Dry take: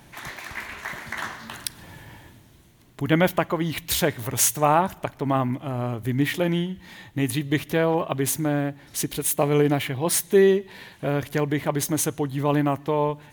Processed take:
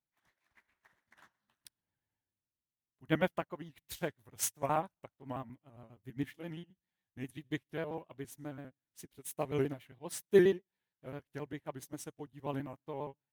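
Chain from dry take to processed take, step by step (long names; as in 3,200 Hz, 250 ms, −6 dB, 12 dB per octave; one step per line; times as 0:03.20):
pitch shifter gated in a rhythm −1.5 semitones, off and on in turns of 67 ms
expander for the loud parts 2.5 to 1, over −41 dBFS
level −5.5 dB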